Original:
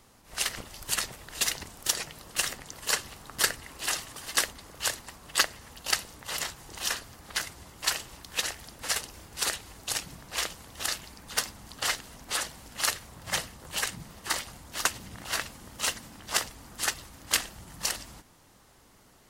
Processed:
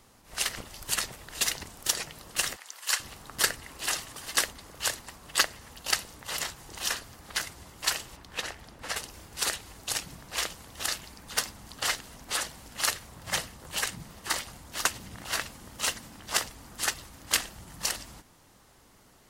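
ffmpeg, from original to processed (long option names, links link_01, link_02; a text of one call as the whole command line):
ffmpeg -i in.wav -filter_complex "[0:a]asettb=1/sr,asplit=3[link_01][link_02][link_03];[link_01]atrim=end=2.564[link_04];[link_02]atrim=start=2.56:end=3,asetpts=PTS-STARTPTS,afade=type=in:duration=0.004:curve=qsin,afade=type=out:start_time=0.436:duration=0.004:curve=qsin,highpass=1000[link_05];[link_03]atrim=start=2.996[link_06];[link_04][link_05]acrossfade=duration=0.004:curve1=hsin:curve2=qsin[link_07];[link_07][link_06]acrossfade=duration=0.004:curve1=qsin:curve2=hsin,asplit=3[link_08][link_09][link_10];[link_08]afade=type=out:start_time=8.15:duration=0.02[link_11];[link_09]highshelf=frequency=4200:gain=-11.5,afade=type=in:start_time=8.15:duration=0.02,afade=type=out:start_time=8.96:duration=0.02[link_12];[link_10]afade=type=in:start_time=8.96:duration=0.02[link_13];[link_11][link_12][link_13]amix=inputs=3:normalize=0" out.wav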